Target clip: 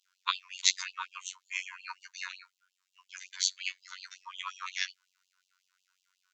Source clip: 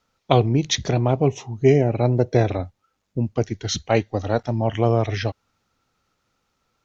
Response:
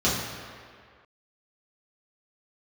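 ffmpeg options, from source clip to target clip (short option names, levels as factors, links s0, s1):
-af "afftfilt=real='hypot(re,im)*cos(PI*b)':imag='0':win_size=2048:overlap=0.75,asetrate=47628,aresample=44100,afftfilt=real='re*gte(b*sr/1024,910*pow(2700/910,0.5+0.5*sin(2*PI*5.5*pts/sr)))':imag='im*gte(b*sr/1024,910*pow(2700/910,0.5+0.5*sin(2*PI*5.5*pts/sr)))':win_size=1024:overlap=0.75,volume=1.19"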